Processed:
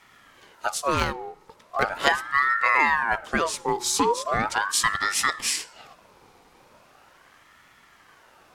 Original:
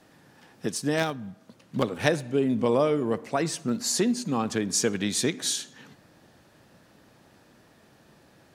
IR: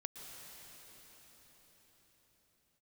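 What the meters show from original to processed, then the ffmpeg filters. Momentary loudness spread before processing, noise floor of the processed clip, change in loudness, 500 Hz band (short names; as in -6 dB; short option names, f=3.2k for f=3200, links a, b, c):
9 LU, -56 dBFS, +3.0 dB, -3.5 dB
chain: -af "aeval=exprs='val(0)*sin(2*PI*1100*n/s+1100*0.45/0.39*sin(2*PI*0.39*n/s))':c=same,volume=5dB"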